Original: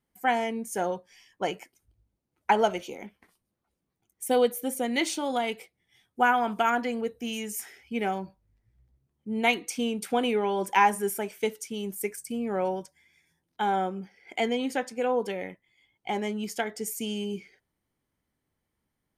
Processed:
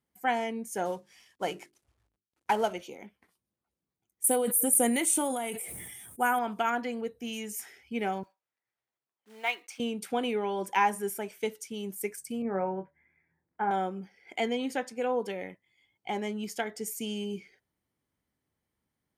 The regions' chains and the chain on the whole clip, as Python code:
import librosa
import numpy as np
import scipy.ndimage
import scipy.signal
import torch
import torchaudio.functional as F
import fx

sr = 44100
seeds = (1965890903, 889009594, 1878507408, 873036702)

y = fx.chain(x, sr, fx.cvsd(bps=64000),
    fx.hum_notches(base_hz=50, count=8), at=(0.85, 2.73))
y = fx.chain(y, sr, fx.high_shelf_res(hz=6800.0, db=14.0, q=3.0),
    fx.sustainer(db_per_s=27.0), at=(4.24, 6.39))
y = fx.chain(y, sr, fx.block_float(bits=5),
    fx.highpass(hz=860.0, slope=12),
    fx.high_shelf(hz=4000.0, db=-11.5), at=(8.23, 9.8))
y = fx.chain(y, sr, fx.steep_lowpass(hz=2100.0, slope=36),
    fx.doubler(ms=26.0, db=-8.5), at=(12.42, 13.71))
y = scipy.signal.sosfilt(scipy.signal.butter(2, 49.0, 'highpass', fs=sr, output='sos'), y)
y = fx.rider(y, sr, range_db=4, speed_s=2.0)
y = y * librosa.db_to_amplitude(-6.5)